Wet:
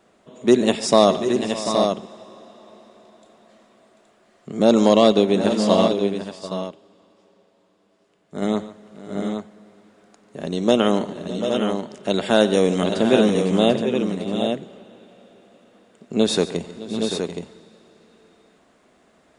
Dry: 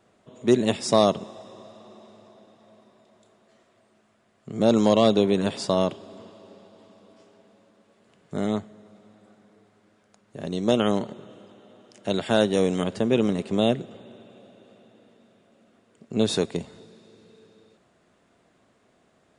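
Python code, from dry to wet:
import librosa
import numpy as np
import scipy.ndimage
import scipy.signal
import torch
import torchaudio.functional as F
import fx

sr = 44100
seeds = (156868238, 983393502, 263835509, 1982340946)

y = fx.peak_eq(x, sr, hz=110.0, db=-12.0, octaves=0.5)
y = fx.echo_multitap(y, sr, ms=(92, 143, 613, 740, 750, 821), db=(-19.5, -16.5, -17.5, -9.5, -14.5, -6.5))
y = fx.upward_expand(y, sr, threshold_db=-38.0, expansion=1.5, at=(5.12, 8.42))
y = F.gain(torch.from_numpy(y), 4.5).numpy()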